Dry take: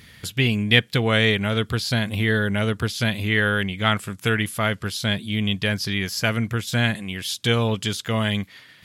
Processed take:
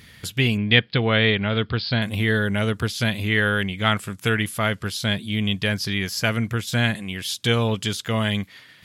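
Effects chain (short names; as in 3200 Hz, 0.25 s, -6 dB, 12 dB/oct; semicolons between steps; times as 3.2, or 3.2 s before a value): 0.57–2.02 steep low-pass 5000 Hz 96 dB/oct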